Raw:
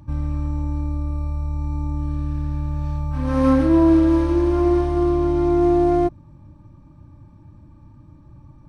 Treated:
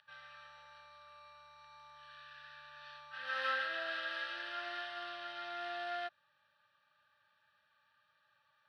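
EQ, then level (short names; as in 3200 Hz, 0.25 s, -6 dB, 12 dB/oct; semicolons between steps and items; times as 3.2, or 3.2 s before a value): ladder band-pass 1900 Hz, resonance 40%; resonant high shelf 1800 Hz +8 dB, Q 1.5; fixed phaser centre 1500 Hz, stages 8; +8.5 dB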